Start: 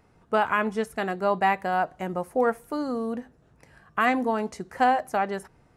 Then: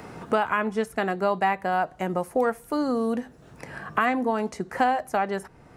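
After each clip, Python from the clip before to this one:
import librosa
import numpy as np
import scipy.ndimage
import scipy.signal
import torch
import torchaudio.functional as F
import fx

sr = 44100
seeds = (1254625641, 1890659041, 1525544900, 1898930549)

y = fx.band_squash(x, sr, depth_pct=70)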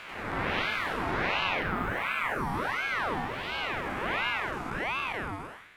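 y = fx.spec_blur(x, sr, span_ms=370.0)
y = fx.echo_pitch(y, sr, ms=93, semitones=3, count=3, db_per_echo=-3.0)
y = fx.ring_lfo(y, sr, carrier_hz=1200.0, swing_pct=60, hz=1.4)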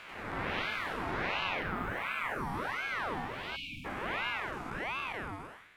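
y = fx.spec_erase(x, sr, start_s=3.56, length_s=0.29, low_hz=310.0, high_hz=2200.0)
y = y * librosa.db_to_amplitude(-5.0)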